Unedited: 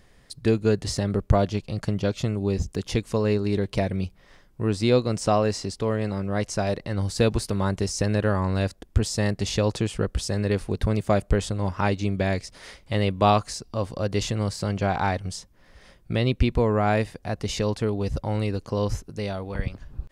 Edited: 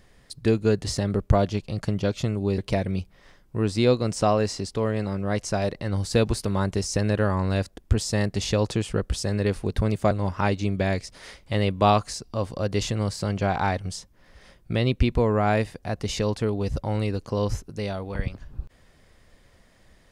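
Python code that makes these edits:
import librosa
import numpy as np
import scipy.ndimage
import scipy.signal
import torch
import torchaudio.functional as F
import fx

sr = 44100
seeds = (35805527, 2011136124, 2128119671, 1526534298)

y = fx.edit(x, sr, fx.cut(start_s=2.58, length_s=1.05),
    fx.cut(start_s=11.16, length_s=0.35), tone=tone)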